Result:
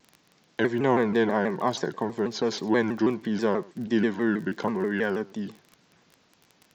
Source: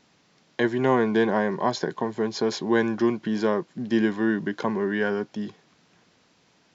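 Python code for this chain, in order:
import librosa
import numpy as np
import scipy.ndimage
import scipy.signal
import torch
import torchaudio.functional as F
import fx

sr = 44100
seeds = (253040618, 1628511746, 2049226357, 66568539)

y = fx.dmg_crackle(x, sr, seeds[0], per_s=20.0, level_db=-34.0)
y = y + 10.0 ** (-22.5 / 20.0) * np.pad(y, (int(104 * sr / 1000.0), 0))[:len(y)]
y = fx.vibrato_shape(y, sr, shape='saw_down', rate_hz=6.2, depth_cents=160.0)
y = y * librosa.db_to_amplitude(-1.5)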